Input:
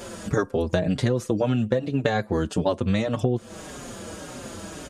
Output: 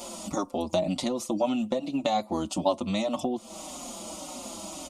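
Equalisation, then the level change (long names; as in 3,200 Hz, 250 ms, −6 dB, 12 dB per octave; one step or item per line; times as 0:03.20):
low-shelf EQ 270 Hz −11 dB
phaser with its sweep stopped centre 440 Hz, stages 6
+3.5 dB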